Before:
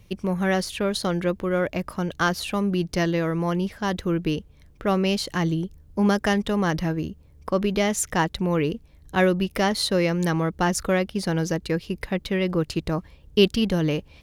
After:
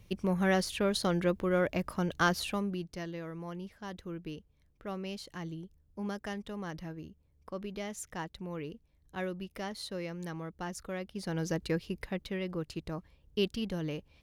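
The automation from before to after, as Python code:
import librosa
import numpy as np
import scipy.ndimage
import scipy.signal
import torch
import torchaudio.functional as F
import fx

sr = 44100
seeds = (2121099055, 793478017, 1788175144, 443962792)

y = fx.gain(x, sr, db=fx.line((2.42, -5.0), (2.95, -17.0), (10.92, -17.0), (11.63, -6.0), (12.49, -13.0)))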